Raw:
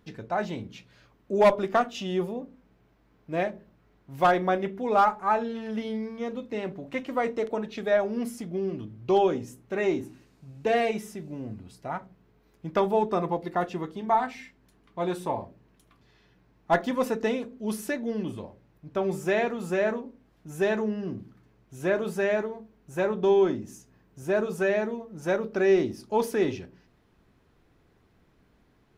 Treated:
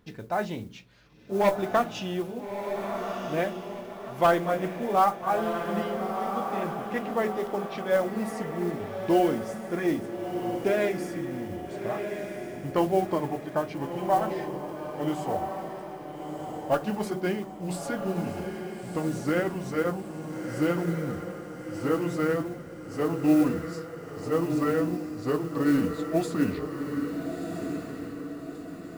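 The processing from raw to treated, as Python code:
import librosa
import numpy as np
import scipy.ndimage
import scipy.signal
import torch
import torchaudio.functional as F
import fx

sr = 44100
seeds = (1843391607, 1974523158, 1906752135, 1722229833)

y = fx.pitch_glide(x, sr, semitones=-5.5, runs='starting unshifted')
y = fx.mod_noise(y, sr, seeds[0], snr_db=26)
y = fx.echo_diffused(y, sr, ms=1331, feedback_pct=46, wet_db=-6.0)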